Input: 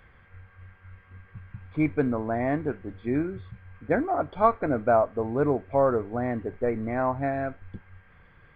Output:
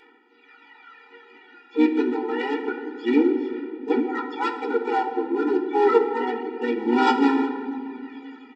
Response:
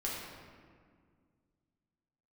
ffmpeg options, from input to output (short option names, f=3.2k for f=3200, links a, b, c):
-filter_complex "[0:a]acontrast=36,aemphasis=mode=production:type=75fm,dynaudnorm=f=270:g=3:m=11dB,aphaser=in_gain=1:out_gain=1:delay=2.9:decay=0.76:speed=0.28:type=sinusoidal,aresample=11025,aeval=exprs='clip(val(0),-1,0.316)':c=same,aresample=44100,asplit=4[a][b][c][d];[b]asetrate=22050,aresample=44100,atempo=2,volume=-18dB[e];[c]asetrate=35002,aresample=44100,atempo=1.25992,volume=-8dB[f];[d]asetrate=66075,aresample=44100,atempo=0.66742,volume=-9dB[g];[a][e][f][g]amix=inputs=4:normalize=0,asplit=2[h][i];[1:a]atrim=start_sample=2205,asetrate=34398,aresample=44100,adelay=17[j];[i][j]afir=irnorm=-1:irlink=0,volume=-11dB[k];[h][k]amix=inputs=2:normalize=0,afftfilt=real='re*eq(mod(floor(b*sr/1024/250),2),1)':imag='im*eq(mod(floor(b*sr/1024/250),2),1)':win_size=1024:overlap=0.75,volume=-8.5dB"